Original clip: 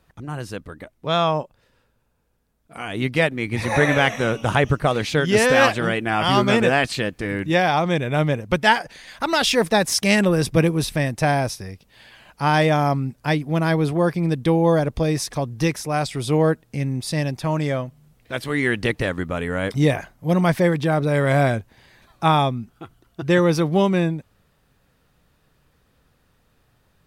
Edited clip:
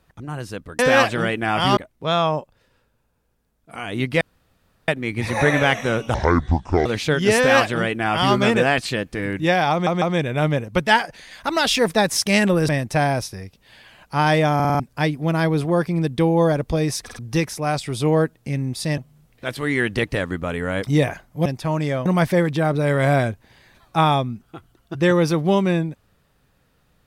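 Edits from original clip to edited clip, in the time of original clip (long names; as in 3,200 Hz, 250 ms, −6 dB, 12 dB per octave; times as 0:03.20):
0:03.23: splice in room tone 0.67 s
0:04.49–0:04.92: play speed 60%
0:05.43–0:06.41: duplicate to 0:00.79
0:07.78: stutter 0.15 s, 3 plays
0:10.45–0:10.96: remove
0:12.82: stutter in place 0.05 s, 5 plays
0:15.31: stutter in place 0.05 s, 3 plays
0:17.25–0:17.85: move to 0:20.33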